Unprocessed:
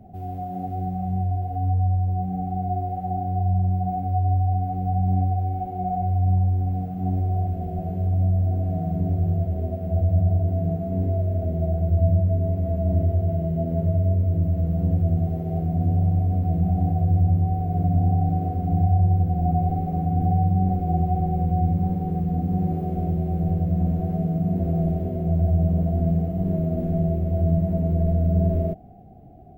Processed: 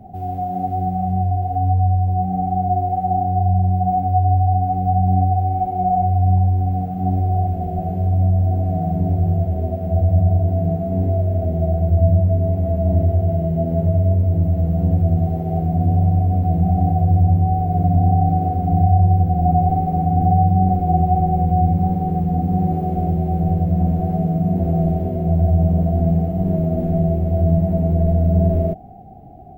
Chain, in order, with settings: bell 800 Hz +9 dB 0.26 oct; gain +4.5 dB

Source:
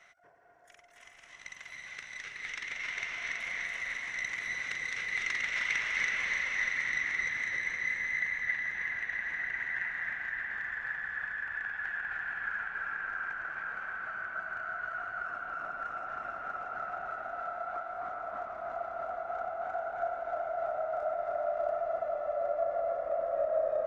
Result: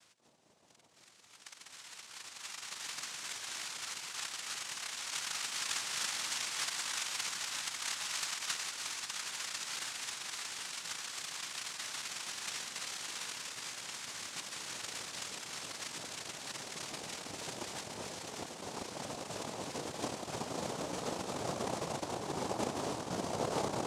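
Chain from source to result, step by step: noise vocoder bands 2; gain -5.5 dB

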